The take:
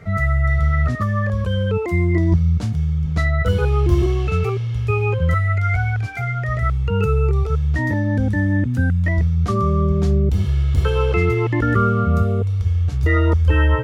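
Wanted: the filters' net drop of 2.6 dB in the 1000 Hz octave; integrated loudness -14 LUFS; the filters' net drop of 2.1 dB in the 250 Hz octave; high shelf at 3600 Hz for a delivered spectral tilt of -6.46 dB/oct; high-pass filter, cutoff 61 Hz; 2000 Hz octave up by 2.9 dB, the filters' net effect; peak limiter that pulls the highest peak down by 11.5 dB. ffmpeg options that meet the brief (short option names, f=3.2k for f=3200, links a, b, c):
-af "highpass=61,equalizer=f=250:t=o:g=-3,equalizer=f=1k:t=o:g=-6.5,equalizer=f=2k:t=o:g=3.5,highshelf=f=3.6k:g=5.5,volume=10.5dB,alimiter=limit=-6.5dB:level=0:latency=1"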